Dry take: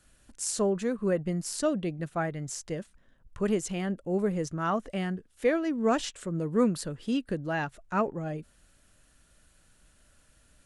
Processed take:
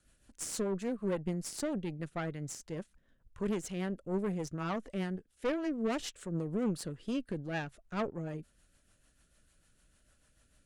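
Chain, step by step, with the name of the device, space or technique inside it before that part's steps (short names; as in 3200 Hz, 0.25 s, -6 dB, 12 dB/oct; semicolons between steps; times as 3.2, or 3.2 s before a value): overdriven rotary cabinet (tube stage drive 26 dB, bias 0.7; rotary speaker horn 6.7 Hz)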